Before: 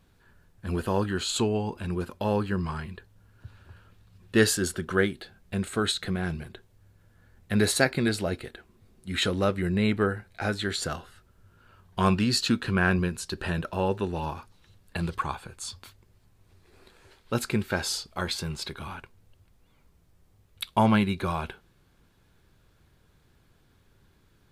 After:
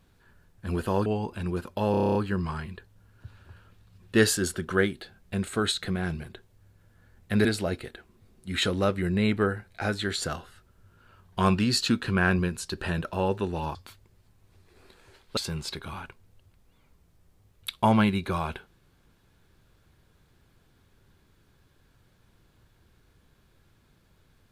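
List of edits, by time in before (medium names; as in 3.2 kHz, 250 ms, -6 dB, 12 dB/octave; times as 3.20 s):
1.06–1.50 s: delete
2.35 s: stutter 0.03 s, 9 plays
7.65–8.05 s: delete
14.35–15.72 s: delete
17.34–18.31 s: delete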